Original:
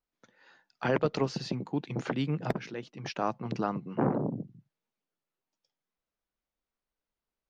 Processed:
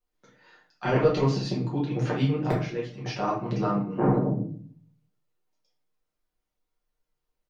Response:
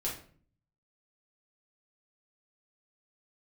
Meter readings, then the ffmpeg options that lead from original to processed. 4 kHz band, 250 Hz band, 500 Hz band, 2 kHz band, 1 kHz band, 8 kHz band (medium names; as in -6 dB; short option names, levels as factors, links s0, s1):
+3.5 dB, +5.5 dB, +5.5 dB, +2.5 dB, +4.5 dB, no reading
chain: -filter_complex "[0:a]aecho=1:1:6.6:0.37[s0];[1:a]atrim=start_sample=2205[s1];[s0][s1]afir=irnorm=-1:irlink=0"